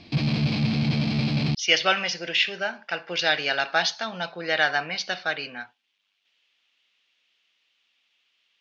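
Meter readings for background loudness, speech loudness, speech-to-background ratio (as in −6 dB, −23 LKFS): −25.0 LKFS, −24.5 LKFS, 0.5 dB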